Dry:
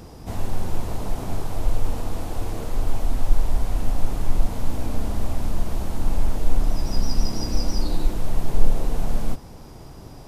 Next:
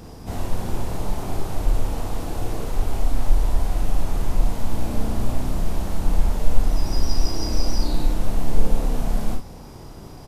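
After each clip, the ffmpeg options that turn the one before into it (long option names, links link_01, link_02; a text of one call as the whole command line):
ffmpeg -i in.wav -af "aecho=1:1:33|58:0.562|0.501" out.wav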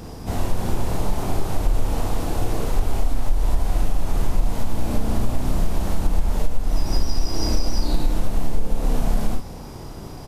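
ffmpeg -i in.wav -af "acompressor=threshold=-16dB:ratio=5,volume=4dB" out.wav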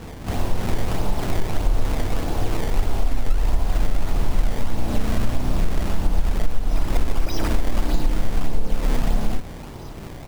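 ffmpeg -i in.wav -af "acrusher=samples=19:mix=1:aa=0.000001:lfo=1:lforange=30.4:lforate=1.6" out.wav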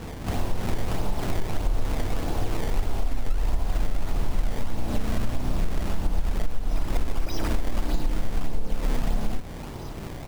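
ffmpeg -i in.wav -af "acompressor=threshold=-26dB:ratio=1.5" out.wav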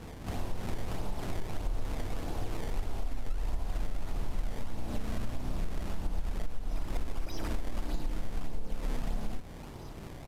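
ffmpeg -i in.wav -af "aresample=32000,aresample=44100,volume=-8.5dB" out.wav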